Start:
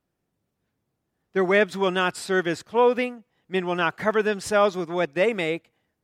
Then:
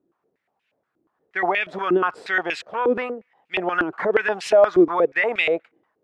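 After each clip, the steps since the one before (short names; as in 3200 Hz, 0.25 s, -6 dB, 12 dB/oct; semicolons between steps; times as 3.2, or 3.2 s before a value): maximiser +17.5 dB; stepped band-pass 8.4 Hz 340–2600 Hz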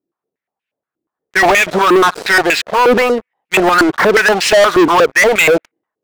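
sample leveller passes 5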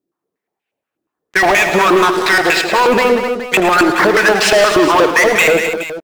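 compressor, threshold -12 dBFS, peak gain reduction 5 dB; on a send: tapped delay 80/110/188/258/421 ms -15/-11.5/-10/-10.5/-13 dB; on the sum: gain +2 dB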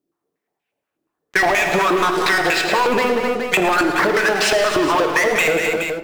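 shoebox room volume 180 m³, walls mixed, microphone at 0.35 m; compressor, threshold -14 dBFS, peak gain reduction 8 dB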